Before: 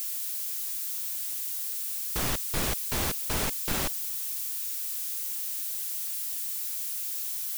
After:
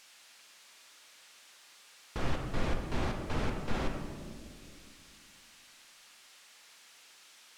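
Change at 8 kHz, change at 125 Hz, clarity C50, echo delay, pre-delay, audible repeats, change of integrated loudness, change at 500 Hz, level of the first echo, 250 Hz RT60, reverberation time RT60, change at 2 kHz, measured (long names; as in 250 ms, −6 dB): −22.0 dB, 0.0 dB, 4.5 dB, no echo audible, 4 ms, no echo audible, −8.5 dB, −1.0 dB, no echo audible, 3.1 s, 2.2 s, −5.5 dB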